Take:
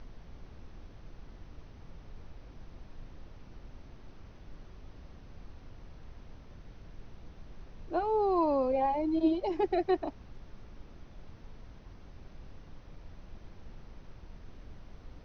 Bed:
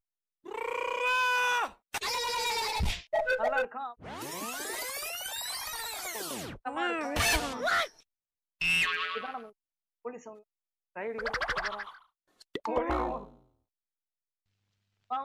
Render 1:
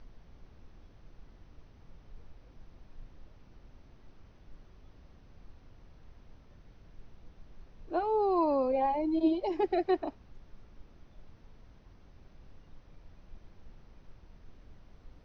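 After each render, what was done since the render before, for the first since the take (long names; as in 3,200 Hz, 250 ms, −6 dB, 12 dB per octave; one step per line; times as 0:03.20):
noise reduction from a noise print 6 dB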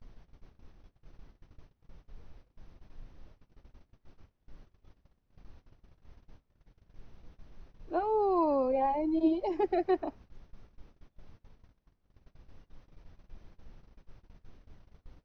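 noise gate −51 dBFS, range −21 dB
dynamic equaliser 3,700 Hz, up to −5 dB, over −57 dBFS, Q 1.3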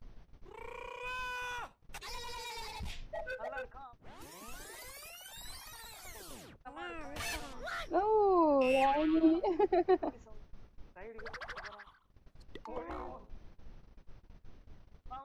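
mix in bed −13 dB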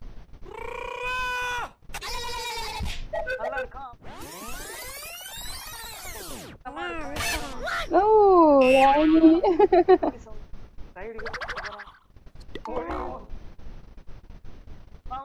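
level +11.5 dB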